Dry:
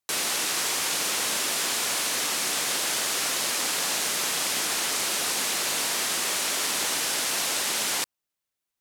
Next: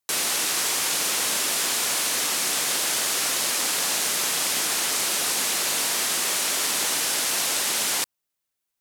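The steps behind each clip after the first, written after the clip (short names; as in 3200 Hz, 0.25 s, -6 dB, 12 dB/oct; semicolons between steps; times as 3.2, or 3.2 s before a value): high shelf 7400 Hz +4 dB; gain +1 dB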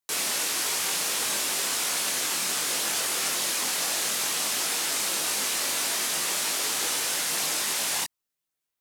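chorus voices 4, 0.42 Hz, delay 22 ms, depth 3.4 ms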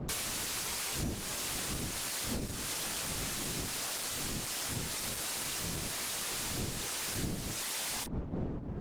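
wind noise 250 Hz -29 dBFS; compressor 20:1, threshold -31 dBFS, peak gain reduction 17.5 dB; Opus 16 kbps 48000 Hz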